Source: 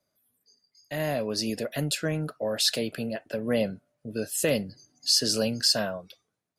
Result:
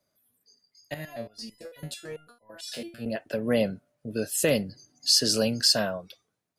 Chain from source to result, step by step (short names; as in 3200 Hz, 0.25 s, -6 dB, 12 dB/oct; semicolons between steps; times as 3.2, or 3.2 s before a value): 0.94–3.06 stepped resonator 9 Hz 81–1000 Hz; gain +1.5 dB